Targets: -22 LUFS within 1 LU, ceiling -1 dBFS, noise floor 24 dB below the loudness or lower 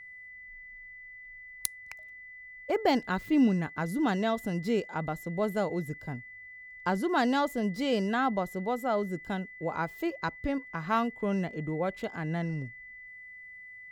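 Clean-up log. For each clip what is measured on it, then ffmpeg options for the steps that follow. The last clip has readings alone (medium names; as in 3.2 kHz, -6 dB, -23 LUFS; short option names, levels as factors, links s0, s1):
steady tone 2 kHz; tone level -45 dBFS; loudness -30.5 LUFS; peak level -8.5 dBFS; loudness target -22.0 LUFS
-> -af "bandreject=f=2000:w=30"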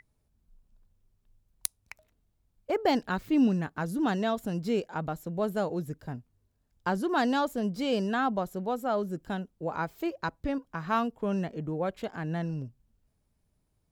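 steady tone not found; loudness -31.0 LUFS; peak level -8.0 dBFS; loudness target -22.0 LUFS
-> -af "volume=2.82,alimiter=limit=0.891:level=0:latency=1"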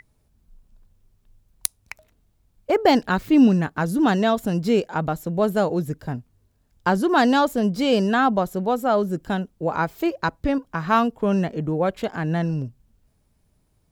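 loudness -22.0 LUFS; peak level -1.0 dBFS; noise floor -66 dBFS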